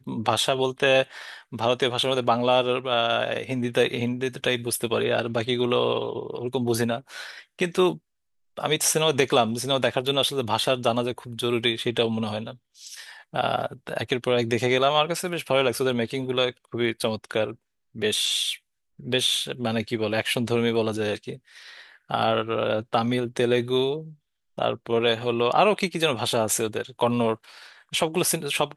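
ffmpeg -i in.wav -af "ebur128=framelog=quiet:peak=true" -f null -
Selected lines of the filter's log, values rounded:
Integrated loudness:
  I:         -24.3 LUFS
  Threshold: -34.8 LUFS
Loudness range:
  LRA:         3.1 LU
  Threshold: -44.9 LUFS
  LRA low:   -26.5 LUFS
  LRA high:  -23.4 LUFS
True peak:
  Peak:       -3.2 dBFS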